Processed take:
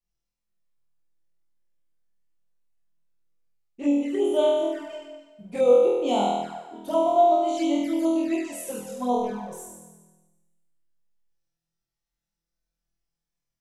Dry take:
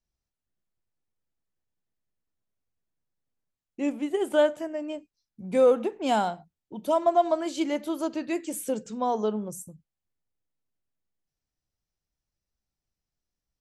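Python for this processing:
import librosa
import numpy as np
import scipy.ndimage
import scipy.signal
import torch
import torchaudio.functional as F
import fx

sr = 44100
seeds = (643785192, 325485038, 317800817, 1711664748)

y = fx.tube_stage(x, sr, drive_db=30.0, bias=0.35, at=(9.17, 9.58))
y = fx.room_flutter(y, sr, wall_m=4.2, rt60_s=1.2)
y = fx.env_flanger(y, sr, rest_ms=5.9, full_db=-17.0)
y = F.gain(torch.from_numpy(y), -2.5).numpy()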